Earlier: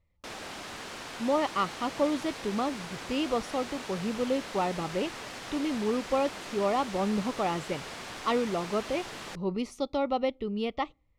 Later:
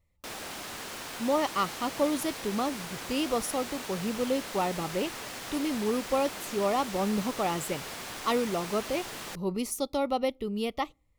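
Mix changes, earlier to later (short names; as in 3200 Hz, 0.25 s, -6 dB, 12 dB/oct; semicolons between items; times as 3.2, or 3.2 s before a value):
speech: remove LPF 3900 Hz 12 dB/oct; background: remove air absorption 53 m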